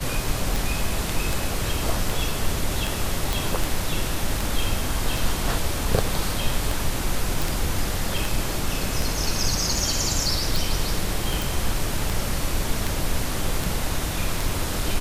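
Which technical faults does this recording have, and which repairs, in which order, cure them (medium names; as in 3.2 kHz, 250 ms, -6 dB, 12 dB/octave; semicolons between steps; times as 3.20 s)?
tick 78 rpm
3.33 s: pop
7.42 s: pop
11.42 s: pop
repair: de-click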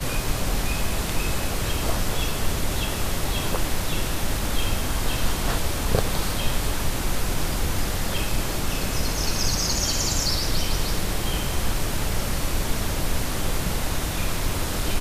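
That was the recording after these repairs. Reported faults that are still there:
nothing left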